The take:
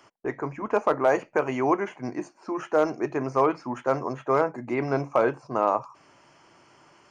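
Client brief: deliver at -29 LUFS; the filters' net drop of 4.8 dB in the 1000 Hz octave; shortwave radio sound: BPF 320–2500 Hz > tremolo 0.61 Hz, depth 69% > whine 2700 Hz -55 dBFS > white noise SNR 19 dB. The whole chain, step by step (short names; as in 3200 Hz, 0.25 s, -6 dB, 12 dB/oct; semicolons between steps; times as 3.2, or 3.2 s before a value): BPF 320–2500 Hz; bell 1000 Hz -6 dB; tremolo 0.61 Hz, depth 69%; whine 2700 Hz -55 dBFS; white noise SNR 19 dB; gain +3.5 dB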